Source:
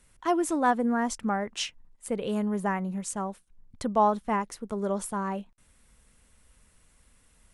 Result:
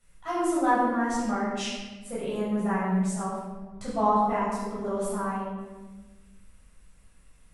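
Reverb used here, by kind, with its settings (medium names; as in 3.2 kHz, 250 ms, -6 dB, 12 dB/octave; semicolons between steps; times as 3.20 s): simulated room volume 940 m³, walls mixed, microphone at 6.7 m; trim -12 dB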